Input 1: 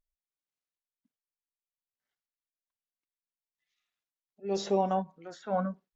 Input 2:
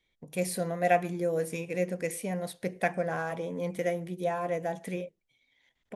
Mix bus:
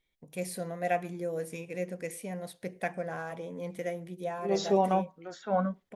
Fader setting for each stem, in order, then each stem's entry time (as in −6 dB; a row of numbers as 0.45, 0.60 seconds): +2.0, −5.0 decibels; 0.00, 0.00 seconds